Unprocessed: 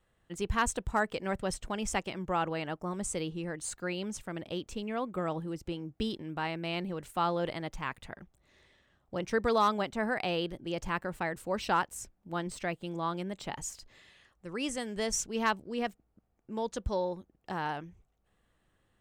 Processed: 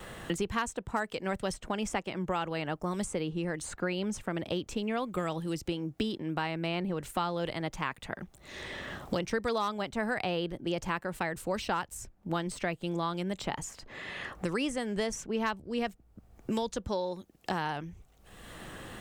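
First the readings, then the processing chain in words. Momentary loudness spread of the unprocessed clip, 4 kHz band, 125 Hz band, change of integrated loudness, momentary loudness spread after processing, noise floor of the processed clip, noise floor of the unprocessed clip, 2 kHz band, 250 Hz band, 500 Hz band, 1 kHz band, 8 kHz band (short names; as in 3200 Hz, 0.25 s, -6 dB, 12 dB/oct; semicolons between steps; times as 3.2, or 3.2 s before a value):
10 LU, +1.0 dB, +2.5 dB, 0.0 dB, 9 LU, -62 dBFS, -74 dBFS, +0.5 dB, +2.5 dB, +0.5 dB, -1.5 dB, -3.5 dB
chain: wow and flutter 22 cents; three-band squash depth 100%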